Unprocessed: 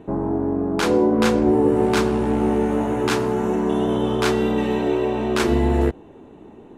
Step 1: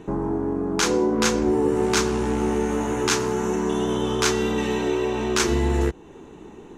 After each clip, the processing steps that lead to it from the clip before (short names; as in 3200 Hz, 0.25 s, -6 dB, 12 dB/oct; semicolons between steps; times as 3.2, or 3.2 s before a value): fifteen-band EQ 100 Hz -7 dB, 250 Hz -6 dB, 630 Hz -9 dB, 6300 Hz +11 dB; in parallel at +2 dB: compressor, threshold -31 dBFS, peak gain reduction 14 dB; on the sum: gain -2 dB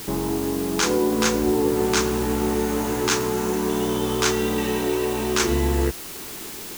requantised 6-bit, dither triangular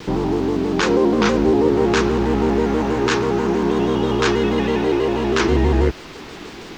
air absorption 190 m; shaped vibrato square 6.2 Hz, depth 100 cents; gain +5.5 dB